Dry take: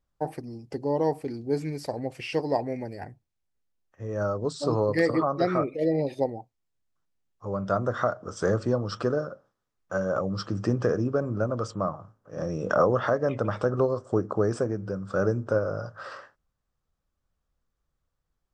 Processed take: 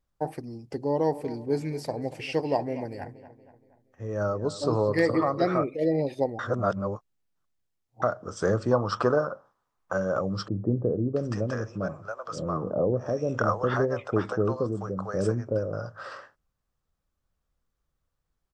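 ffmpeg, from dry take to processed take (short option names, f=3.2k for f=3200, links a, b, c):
-filter_complex "[0:a]asplit=3[a][b][c];[a]afade=t=out:st=1.12:d=0.02[d];[b]asplit=2[e][f];[f]adelay=236,lowpass=f=3.7k:p=1,volume=-15dB,asplit=2[g][h];[h]adelay=236,lowpass=f=3.7k:p=1,volume=0.49,asplit=2[i][j];[j]adelay=236,lowpass=f=3.7k:p=1,volume=0.49,asplit=2[k][l];[l]adelay=236,lowpass=f=3.7k:p=1,volume=0.49,asplit=2[m][n];[n]adelay=236,lowpass=f=3.7k:p=1,volume=0.49[o];[e][g][i][k][m][o]amix=inputs=6:normalize=0,afade=t=in:st=1.12:d=0.02,afade=t=out:st=5.57:d=0.02[p];[c]afade=t=in:st=5.57:d=0.02[q];[d][p][q]amix=inputs=3:normalize=0,asettb=1/sr,asplit=3[r][s][t];[r]atrim=end=8.714[u];[s]atrim=start=8.71:end=9.93,asetpts=PTS-STARTPTS,afade=t=in:d=0.004:c=qsin,afade=t=out:st=1.216:d=0.004:c=qsin,equalizer=f=980:w=1.2:g=12.5[v];[t]atrim=start=9.926[w];[u][v]acrossfade=d=0.004:c1=hsin:c2=qsin[x];[x][w]acrossfade=d=0.004:c1=qsin:c2=hsin,asettb=1/sr,asplit=3[y][z][aa];[y]atrim=end=10.484[ab];[z]atrim=start=10.48:end=15.73,asetpts=PTS-STARTPTS,afade=t=in:d=0.004:c=qsin,afade=t=out:st=5.246:d=0.004:c=qsin,acrossover=split=650[ac][ad];[ad]adelay=680[ae];[ac][ae]amix=inputs=2:normalize=0,atrim=end_sample=231525[af];[aa]atrim=start=15.726[ag];[ab][af]acrossfade=d=0.004:c1=hsin:c2=qsin[ah];[ah][ag]acrossfade=d=0.004:c1=qsin:c2=hsin,asplit=3[ai][aj][ak];[ai]atrim=end=6.392[al];[aj]atrim=start=6.388:end=8.022,asetpts=PTS-STARTPTS,areverse[am];[ak]atrim=start=8.018[an];[al][am]acrossfade=d=0.004:c1=hsin:c2=hsin[ao];[ao][an]acrossfade=d=0.004:c1=hsin:c2=hsin"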